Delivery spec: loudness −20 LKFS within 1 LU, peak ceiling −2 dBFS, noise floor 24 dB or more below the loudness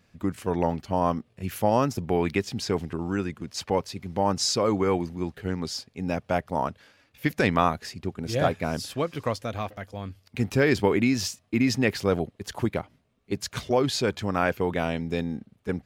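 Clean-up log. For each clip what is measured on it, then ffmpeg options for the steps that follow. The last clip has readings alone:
integrated loudness −27.0 LKFS; sample peak −6.5 dBFS; target loudness −20.0 LKFS
→ -af "volume=7dB,alimiter=limit=-2dB:level=0:latency=1"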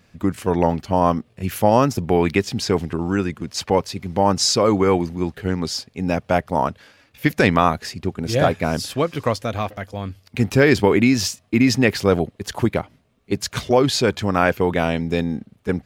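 integrated loudness −20.0 LKFS; sample peak −2.0 dBFS; background noise floor −59 dBFS

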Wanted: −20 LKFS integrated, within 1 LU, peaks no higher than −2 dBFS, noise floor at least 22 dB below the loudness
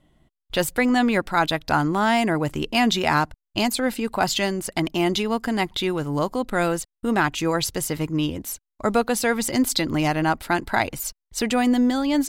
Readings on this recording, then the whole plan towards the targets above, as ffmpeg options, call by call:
integrated loudness −23.0 LKFS; sample peak −7.5 dBFS; target loudness −20.0 LKFS
→ -af "volume=3dB"

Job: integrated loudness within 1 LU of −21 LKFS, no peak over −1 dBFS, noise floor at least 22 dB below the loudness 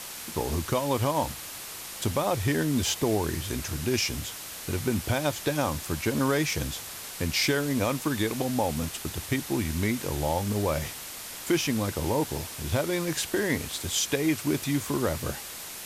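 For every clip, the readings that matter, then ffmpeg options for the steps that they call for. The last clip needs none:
background noise floor −40 dBFS; target noise floor −51 dBFS; integrated loudness −28.5 LKFS; sample peak −13.5 dBFS; target loudness −21.0 LKFS
→ -af "afftdn=noise_reduction=11:noise_floor=-40"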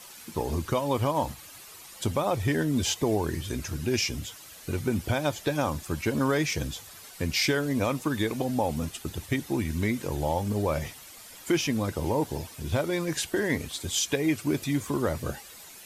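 background noise floor −47 dBFS; target noise floor −51 dBFS
→ -af "afftdn=noise_reduction=6:noise_floor=-47"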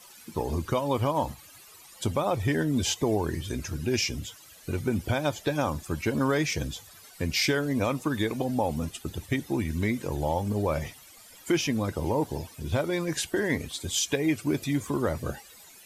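background noise floor −51 dBFS; integrated loudness −28.5 LKFS; sample peak −14.5 dBFS; target loudness −21.0 LKFS
→ -af "volume=7.5dB"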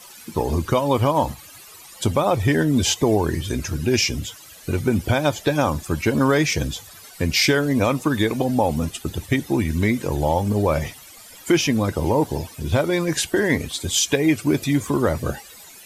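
integrated loudness −21.0 LKFS; sample peak −7.0 dBFS; background noise floor −44 dBFS

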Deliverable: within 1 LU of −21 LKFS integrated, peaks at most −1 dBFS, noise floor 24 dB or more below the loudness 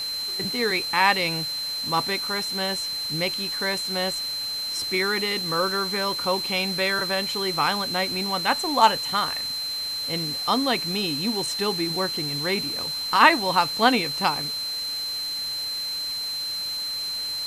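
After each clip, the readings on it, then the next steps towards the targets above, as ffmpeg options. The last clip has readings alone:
interfering tone 4,100 Hz; level of the tone −27 dBFS; background noise floor −30 dBFS; target noise floor −48 dBFS; integrated loudness −23.5 LKFS; sample peak −1.5 dBFS; target loudness −21.0 LKFS
→ -af "bandreject=frequency=4100:width=30"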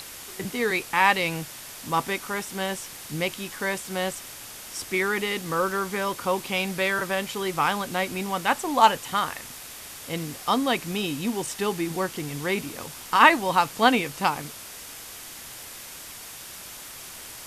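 interfering tone none found; background noise floor −41 dBFS; target noise floor −49 dBFS
→ -af "afftdn=noise_reduction=8:noise_floor=-41"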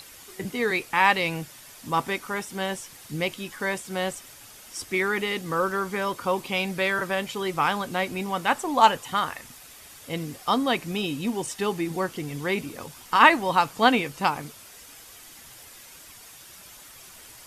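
background noise floor −47 dBFS; target noise floor −49 dBFS
→ -af "afftdn=noise_reduction=6:noise_floor=-47"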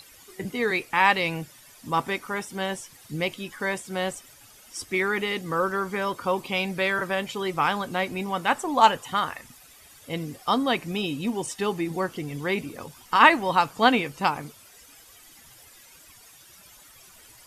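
background noise floor −52 dBFS; integrated loudness −25.0 LKFS; sample peak −2.0 dBFS; target loudness −21.0 LKFS
→ -af "volume=4dB,alimiter=limit=-1dB:level=0:latency=1"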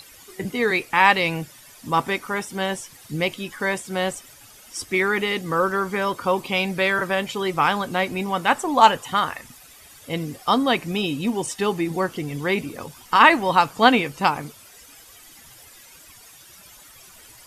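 integrated loudness −21.5 LKFS; sample peak −1.0 dBFS; background noise floor −48 dBFS

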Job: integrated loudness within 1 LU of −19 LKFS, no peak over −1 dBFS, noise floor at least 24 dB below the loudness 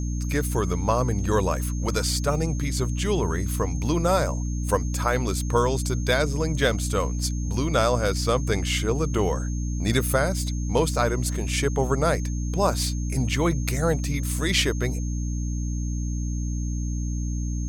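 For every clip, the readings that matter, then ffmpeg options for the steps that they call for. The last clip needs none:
mains hum 60 Hz; hum harmonics up to 300 Hz; level of the hum −25 dBFS; interfering tone 6,400 Hz; level of the tone −41 dBFS; integrated loudness −25.0 LKFS; sample peak −7.5 dBFS; target loudness −19.0 LKFS
→ -af "bandreject=frequency=60:width_type=h:width=4,bandreject=frequency=120:width_type=h:width=4,bandreject=frequency=180:width_type=h:width=4,bandreject=frequency=240:width_type=h:width=4,bandreject=frequency=300:width_type=h:width=4"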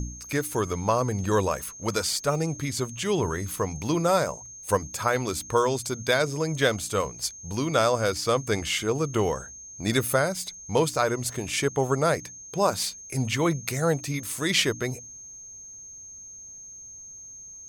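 mains hum none found; interfering tone 6,400 Hz; level of the tone −41 dBFS
→ -af "bandreject=frequency=6400:width=30"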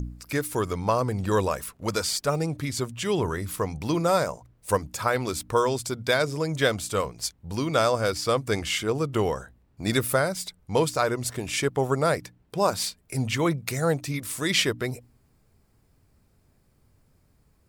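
interfering tone none found; integrated loudness −26.5 LKFS; sample peak −9.0 dBFS; target loudness −19.0 LKFS
→ -af "volume=7.5dB"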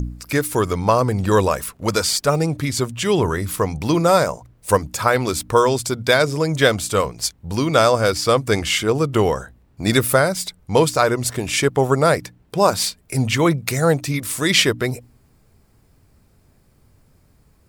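integrated loudness −19.0 LKFS; sample peak −1.5 dBFS; background noise floor −56 dBFS

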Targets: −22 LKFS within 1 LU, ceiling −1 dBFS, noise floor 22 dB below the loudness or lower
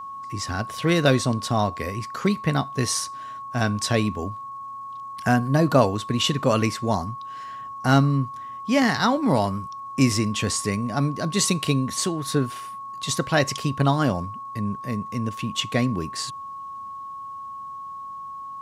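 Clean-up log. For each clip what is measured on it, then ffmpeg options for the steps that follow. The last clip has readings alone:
interfering tone 1,100 Hz; level of the tone −33 dBFS; integrated loudness −23.5 LKFS; sample peak −4.0 dBFS; target loudness −22.0 LKFS
→ -af "bandreject=frequency=1100:width=30"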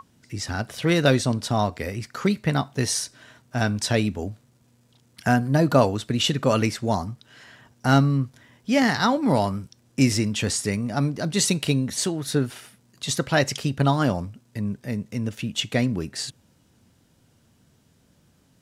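interfering tone none found; integrated loudness −24.0 LKFS; sample peak −4.5 dBFS; target loudness −22.0 LKFS
→ -af "volume=2dB"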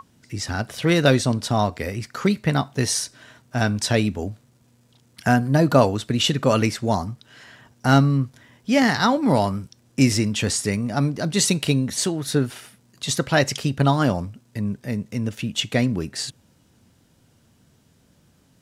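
integrated loudness −22.0 LKFS; sample peak −2.5 dBFS; background noise floor −60 dBFS

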